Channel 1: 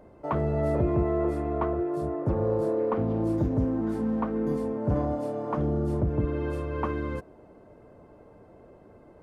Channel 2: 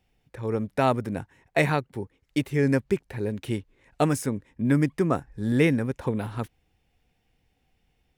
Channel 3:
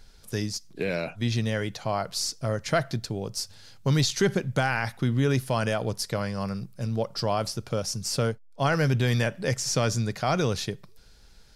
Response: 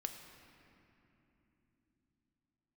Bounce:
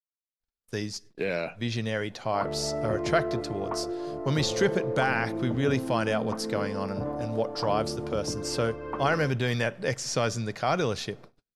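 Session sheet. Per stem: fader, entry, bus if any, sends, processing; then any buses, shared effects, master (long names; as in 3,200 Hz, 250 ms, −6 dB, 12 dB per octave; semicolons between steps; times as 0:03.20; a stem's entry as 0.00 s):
−3.5 dB, 2.10 s, no send, high-pass filter 97 Hz
muted
−0.5 dB, 0.40 s, send −19 dB, no processing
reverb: on, RT60 3.0 s, pre-delay 4 ms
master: noise gate −43 dBFS, range −41 dB; low-pass filter 11,000 Hz 12 dB per octave; bass and treble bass −6 dB, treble −5 dB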